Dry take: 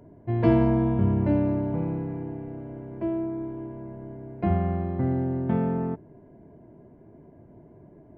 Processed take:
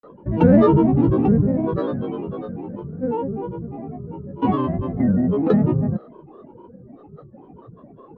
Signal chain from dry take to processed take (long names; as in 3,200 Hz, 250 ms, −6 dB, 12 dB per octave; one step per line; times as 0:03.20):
hollow resonant body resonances 240/630/2,000 Hz, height 17 dB
granular cloud 100 ms, grains 20 per second, spray 27 ms, pitch spread up and down by 12 semitones
level −2.5 dB